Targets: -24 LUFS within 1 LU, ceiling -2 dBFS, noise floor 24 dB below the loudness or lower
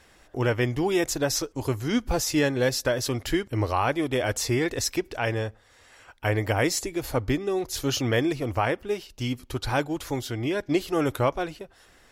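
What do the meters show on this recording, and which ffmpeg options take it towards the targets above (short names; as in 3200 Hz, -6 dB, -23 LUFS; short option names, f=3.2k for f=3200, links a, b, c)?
loudness -26.5 LUFS; peak -11.5 dBFS; loudness target -24.0 LUFS
-> -af "volume=2.5dB"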